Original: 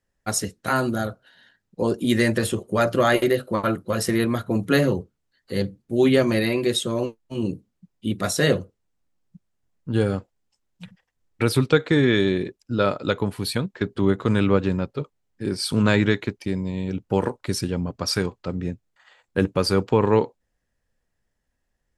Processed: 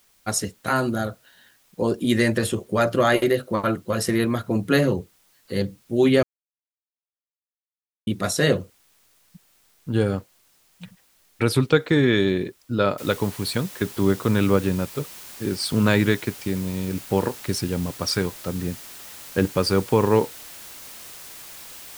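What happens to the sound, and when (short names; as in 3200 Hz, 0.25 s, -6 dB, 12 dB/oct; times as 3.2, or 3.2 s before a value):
6.23–8.07 mute
12.98 noise floor step -61 dB -41 dB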